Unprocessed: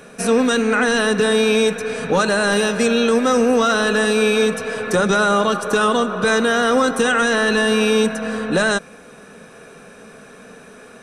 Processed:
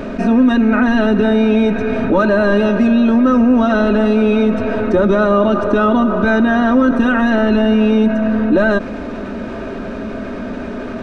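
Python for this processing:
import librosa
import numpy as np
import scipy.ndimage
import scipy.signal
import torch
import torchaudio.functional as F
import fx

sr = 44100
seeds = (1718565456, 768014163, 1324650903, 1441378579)

p1 = fx.low_shelf(x, sr, hz=290.0, db=10.0)
p2 = p1 + 0.84 * np.pad(p1, (int(3.2 * sr / 1000.0), 0))[:len(p1)]
p3 = fx.quant_dither(p2, sr, seeds[0], bits=6, dither='triangular')
p4 = p2 + F.gain(torch.from_numpy(p3), -3.0).numpy()
p5 = fx.spacing_loss(p4, sr, db_at_10k=40)
p6 = fx.env_flatten(p5, sr, amount_pct=50)
y = F.gain(torch.from_numpy(p6), -5.5).numpy()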